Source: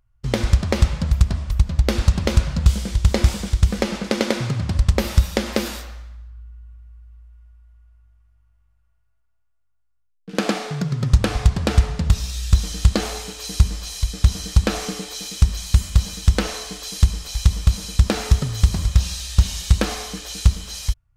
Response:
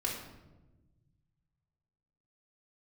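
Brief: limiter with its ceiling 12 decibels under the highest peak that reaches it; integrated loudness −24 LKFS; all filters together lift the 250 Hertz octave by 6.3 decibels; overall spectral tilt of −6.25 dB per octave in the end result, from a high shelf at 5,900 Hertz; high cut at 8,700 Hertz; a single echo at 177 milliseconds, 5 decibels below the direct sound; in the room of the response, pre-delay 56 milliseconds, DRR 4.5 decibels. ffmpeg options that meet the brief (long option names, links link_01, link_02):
-filter_complex "[0:a]lowpass=8700,equalizer=frequency=250:width_type=o:gain=8.5,highshelf=frequency=5900:gain=-4.5,alimiter=limit=-13dB:level=0:latency=1,aecho=1:1:177:0.562,asplit=2[link_01][link_02];[1:a]atrim=start_sample=2205,adelay=56[link_03];[link_02][link_03]afir=irnorm=-1:irlink=0,volume=-8.5dB[link_04];[link_01][link_04]amix=inputs=2:normalize=0,volume=-2dB"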